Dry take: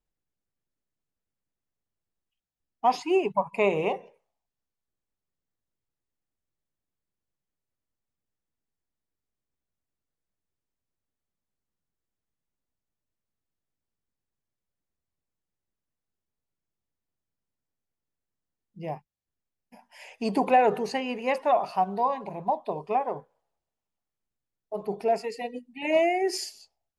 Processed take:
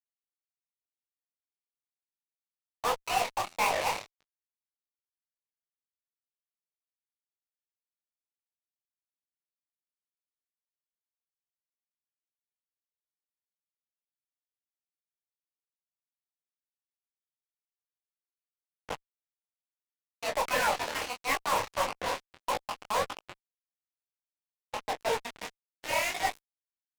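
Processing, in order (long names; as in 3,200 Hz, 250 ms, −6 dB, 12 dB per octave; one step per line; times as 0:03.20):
gate on every frequency bin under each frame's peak −10 dB weak
Butterworth high-pass 460 Hz 96 dB per octave
reverb reduction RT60 0.99 s
Bessel low-pass filter 1,400 Hz, order 2
reverb whose tail is shaped and stops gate 360 ms rising, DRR 10 dB
fuzz pedal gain 50 dB, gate −41 dBFS
downward expander −38 dBFS
micro pitch shift up and down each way 56 cents
level −6.5 dB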